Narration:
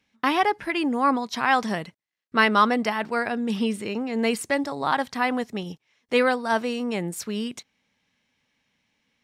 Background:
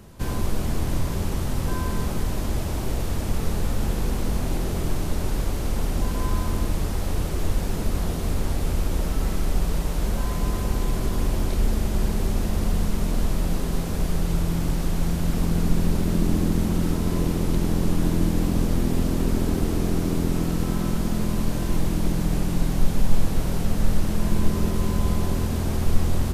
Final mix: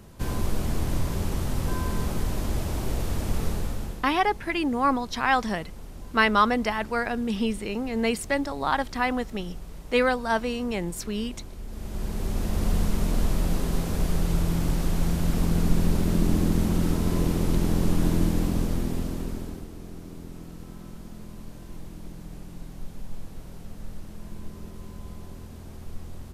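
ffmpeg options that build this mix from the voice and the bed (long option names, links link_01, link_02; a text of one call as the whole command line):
ffmpeg -i stem1.wav -i stem2.wav -filter_complex "[0:a]adelay=3800,volume=-1.5dB[link_01];[1:a]volume=14dB,afade=type=out:start_time=3.43:duration=0.64:silence=0.177828,afade=type=in:start_time=11.67:duration=1.07:silence=0.158489,afade=type=out:start_time=18.15:duration=1.53:silence=0.149624[link_02];[link_01][link_02]amix=inputs=2:normalize=0" out.wav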